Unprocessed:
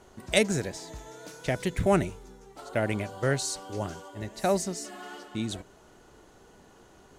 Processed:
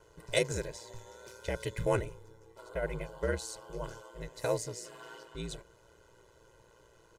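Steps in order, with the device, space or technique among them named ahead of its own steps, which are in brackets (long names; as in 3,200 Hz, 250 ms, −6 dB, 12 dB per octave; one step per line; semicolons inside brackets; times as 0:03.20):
0:02.01–0:03.84: parametric band 5,800 Hz −4.5 dB 2.2 octaves
ring-modulated robot voice (ring modulation 58 Hz; comb filter 2 ms, depth 83%)
level −5.5 dB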